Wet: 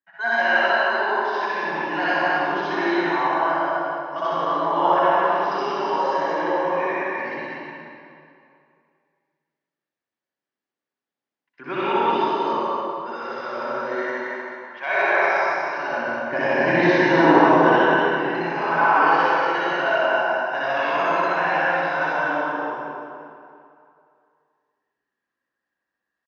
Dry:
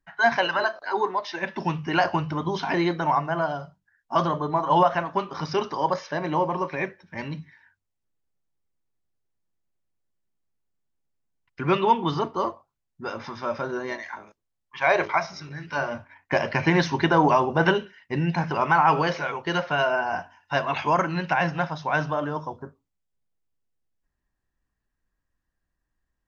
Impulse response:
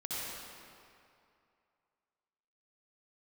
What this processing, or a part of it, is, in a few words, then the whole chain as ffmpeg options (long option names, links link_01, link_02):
station announcement: -filter_complex "[0:a]asettb=1/sr,asplit=3[link_01][link_02][link_03];[link_01]atrim=end=15.834[link_04];[link_02]atrim=start=15.83:end=17.61,asetpts=PTS-STARTPTS,afade=type=in:duration=0.004:curve=qsin,afade=type=out:start_time=1.776:duration=0.004:curve=qsin,lowshelf=frequency=320:gain=11.5[link_05];[link_03]atrim=start=17.606[link_06];[link_04][link_05]acrossfade=duration=0.004:curve1=hsin:curve2=qsin[link_07];[link_07][link_06]acrossfade=duration=0.004:curve1=qsin:curve2=hsin,highpass=300,lowpass=4600,equalizer=frequency=1700:width_type=o:width=0.26:gain=6,aecho=1:1:61.22|242:0.891|0.708[link_08];[1:a]atrim=start_sample=2205[link_09];[link_08][link_09]afir=irnorm=-1:irlink=0,volume=-3.5dB"